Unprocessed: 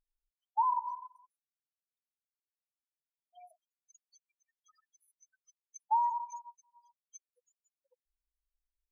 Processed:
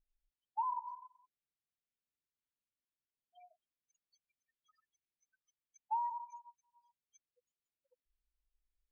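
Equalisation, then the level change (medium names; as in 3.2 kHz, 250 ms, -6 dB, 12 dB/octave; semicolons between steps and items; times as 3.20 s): low-pass 4.6 kHz; distance through air 200 m; peaking EQ 950 Hz -11 dB 2.1 oct; +4.5 dB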